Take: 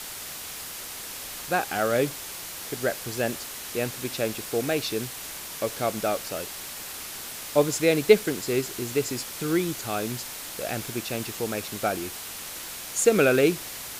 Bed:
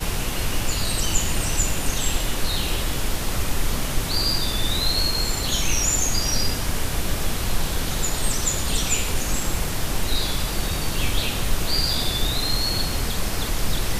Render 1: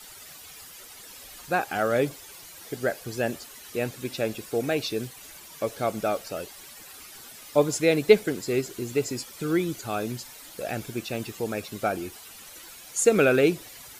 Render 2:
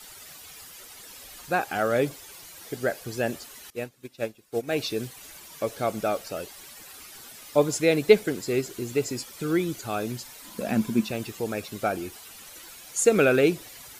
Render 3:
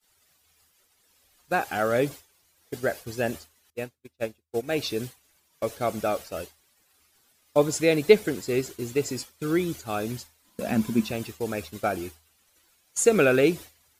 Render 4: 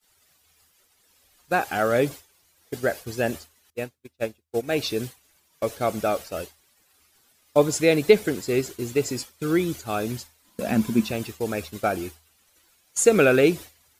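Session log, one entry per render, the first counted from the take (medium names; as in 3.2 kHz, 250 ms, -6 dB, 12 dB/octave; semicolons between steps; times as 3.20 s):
noise reduction 12 dB, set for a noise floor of -38 dBFS
3.70–4.73 s: upward expansion 2.5:1, over -36 dBFS; 10.44–11.11 s: small resonant body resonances 220/1000 Hz, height 17 dB, ringing for 70 ms
expander -32 dBFS; peaking EQ 79 Hz +14 dB 0.2 oct
trim +2.5 dB; peak limiter -3 dBFS, peak gain reduction 3 dB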